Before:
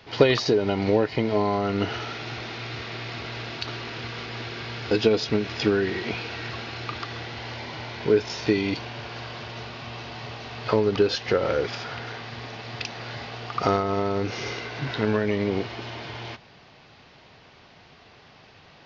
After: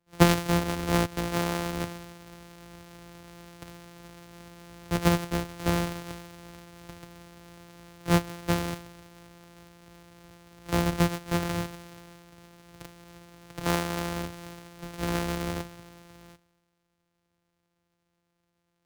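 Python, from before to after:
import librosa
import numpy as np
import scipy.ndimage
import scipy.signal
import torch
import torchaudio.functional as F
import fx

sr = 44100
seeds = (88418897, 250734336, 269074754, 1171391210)

y = np.r_[np.sort(x[:len(x) // 256 * 256].reshape(-1, 256), axis=1).ravel(), x[len(x) // 256 * 256:]]
y = fx.band_widen(y, sr, depth_pct=70)
y = y * 10.0 ** (-6.5 / 20.0)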